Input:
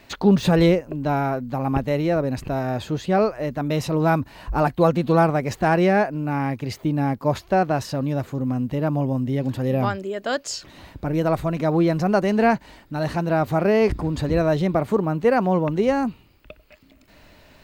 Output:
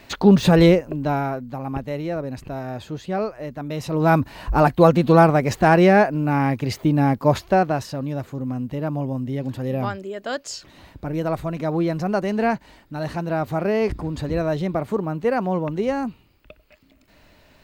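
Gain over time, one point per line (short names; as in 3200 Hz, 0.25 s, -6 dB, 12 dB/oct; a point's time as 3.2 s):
0.84 s +3 dB
1.62 s -5.5 dB
3.76 s -5.5 dB
4.16 s +4 dB
7.4 s +4 dB
7.92 s -3 dB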